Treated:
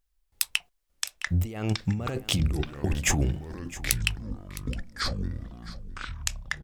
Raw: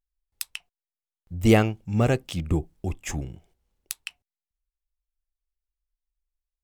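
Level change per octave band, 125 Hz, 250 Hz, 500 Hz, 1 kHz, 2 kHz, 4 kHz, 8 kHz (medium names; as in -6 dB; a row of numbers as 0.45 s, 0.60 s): -1.0 dB, -5.5 dB, -9.5 dB, -4.5 dB, +3.0 dB, +7.5 dB, +8.0 dB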